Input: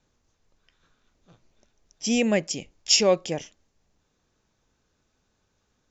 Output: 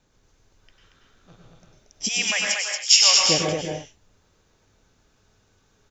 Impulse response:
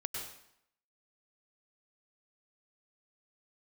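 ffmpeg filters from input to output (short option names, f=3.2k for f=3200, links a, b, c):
-filter_complex "[0:a]asplit=3[a][b][c];[a]afade=t=out:st=2.07:d=0.02[d];[b]highpass=f=990:w=0.5412,highpass=f=990:w=1.3066,afade=t=in:st=2.07:d=0.02,afade=t=out:st=3.18:d=0.02[e];[c]afade=t=in:st=3.18:d=0.02[f];[d][e][f]amix=inputs=3:normalize=0,aecho=1:1:231:0.631[g];[1:a]atrim=start_sample=2205,afade=t=out:st=0.29:d=0.01,atrim=end_sample=13230[h];[g][h]afir=irnorm=-1:irlink=0,volume=6.5dB"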